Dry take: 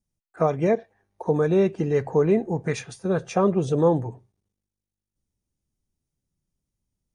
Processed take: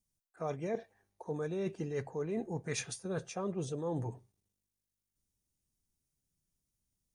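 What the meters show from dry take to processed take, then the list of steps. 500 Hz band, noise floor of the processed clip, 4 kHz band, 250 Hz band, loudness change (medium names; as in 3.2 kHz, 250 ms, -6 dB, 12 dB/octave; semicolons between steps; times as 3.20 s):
-16.0 dB, under -85 dBFS, -5.0 dB, -15.0 dB, -15.0 dB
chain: treble shelf 4.1 kHz +11 dB; reverse; compression 10:1, threshold -27 dBFS, peak gain reduction 13.5 dB; reverse; trim -6 dB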